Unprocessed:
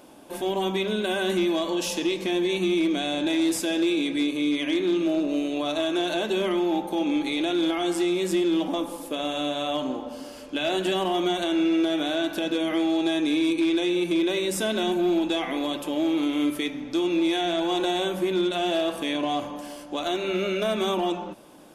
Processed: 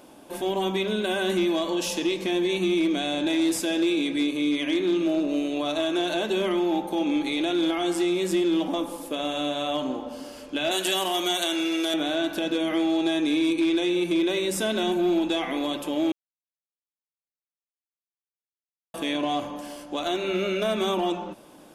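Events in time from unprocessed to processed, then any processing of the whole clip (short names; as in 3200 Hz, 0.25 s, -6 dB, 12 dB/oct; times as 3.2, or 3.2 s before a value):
10.71–11.94 RIAA curve recording
16.12–18.94 mute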